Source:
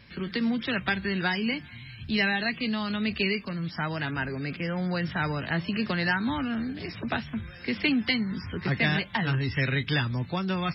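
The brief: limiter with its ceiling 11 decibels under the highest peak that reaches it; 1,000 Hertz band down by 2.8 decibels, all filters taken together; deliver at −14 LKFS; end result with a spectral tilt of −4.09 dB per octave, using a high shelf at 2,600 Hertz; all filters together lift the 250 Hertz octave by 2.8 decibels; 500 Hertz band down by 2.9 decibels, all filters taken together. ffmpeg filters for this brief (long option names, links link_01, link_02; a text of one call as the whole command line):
ffmpeg -i in.wav -af "equalizer=frequency=250:width_type=o:gain=4.5,equalizer=frequency=500:width_type=o:gain=-5,equalizer=frequency=1000:width_type=o:gain=-4,highshelf=frequency=2600:gain=8,volume=15.5dB,alimiter=limit=-4.5dB:level=0:latency=1" out.wav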